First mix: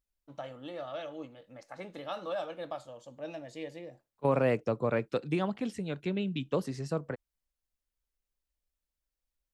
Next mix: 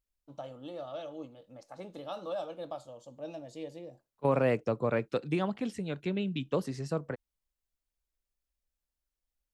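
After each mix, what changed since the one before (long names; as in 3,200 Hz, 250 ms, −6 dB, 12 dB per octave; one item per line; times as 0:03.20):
first voice: add parametric band 1,900 Hz −11.5 dB 0.93 octaves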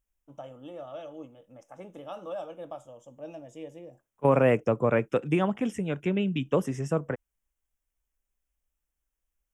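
second voice +5.5 dB
master: add Butterworth band-reject 4,300 Hz, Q 1.9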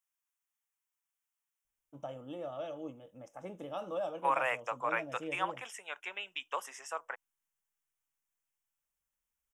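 first voice: entry +1.65 s
second voice: add Chebyshev high-pass filter 880 Hz, order 3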